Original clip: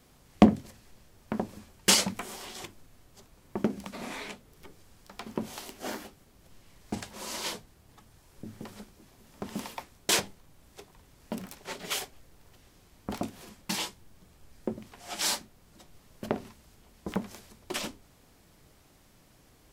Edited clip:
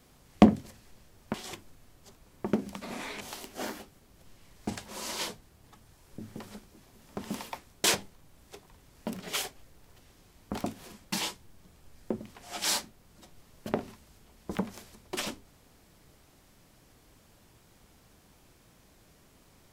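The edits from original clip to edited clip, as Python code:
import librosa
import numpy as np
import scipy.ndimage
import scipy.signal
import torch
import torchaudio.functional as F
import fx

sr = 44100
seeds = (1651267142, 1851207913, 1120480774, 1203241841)

y = fx.edit(x, sr, fx.cut(start_s=1.34, length_s=1.11),
    fx.cut(start_s=4.32, length_s=1.14),
    fx.cut(start_s=11.45, length_s=0.32), tone=tone)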